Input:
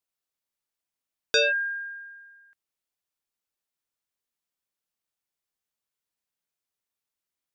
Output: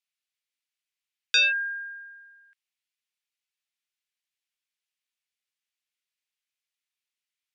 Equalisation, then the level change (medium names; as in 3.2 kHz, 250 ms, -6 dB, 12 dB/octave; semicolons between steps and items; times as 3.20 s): band-pass filter 2.4 kHz, Q 1.5; tilt EQ +4 dB/octave; 0.0 dB